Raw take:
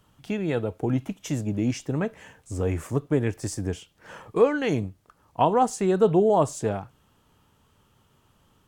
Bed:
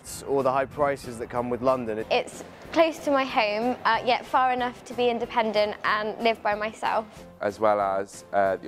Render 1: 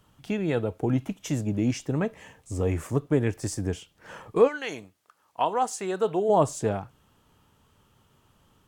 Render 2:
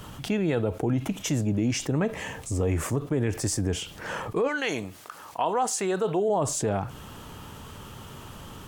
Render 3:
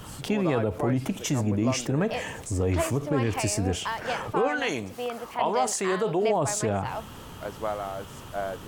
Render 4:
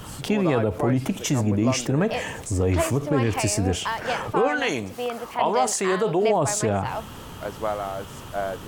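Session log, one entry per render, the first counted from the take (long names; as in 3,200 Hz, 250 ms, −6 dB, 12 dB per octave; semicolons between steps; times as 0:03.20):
0:02.03–0:02.73: notch filter 1,500 Hz, Q 6.8; 0:04.47–0:06.28: high-pass filter 1,500 Hz → 660 Hz 6 dB per octave
brickwall limiter −17.5 dBFS, peak gain reduction 9.5 dB; envelope flattener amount 50%
mix in bed −9 dB
level +3.5 dB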